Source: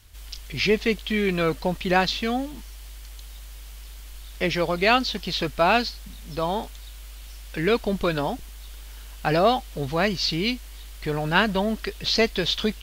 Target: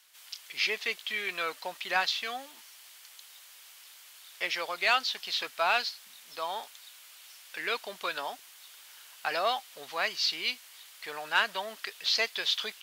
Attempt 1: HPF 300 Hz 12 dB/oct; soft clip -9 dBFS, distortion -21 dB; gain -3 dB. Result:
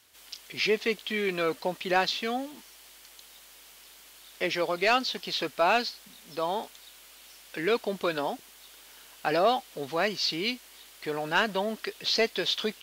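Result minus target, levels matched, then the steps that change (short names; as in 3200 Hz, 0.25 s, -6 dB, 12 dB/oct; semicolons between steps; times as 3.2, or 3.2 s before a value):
250 Hz band +14.5 dB
change: HPF 950 Hz 12 dB/oct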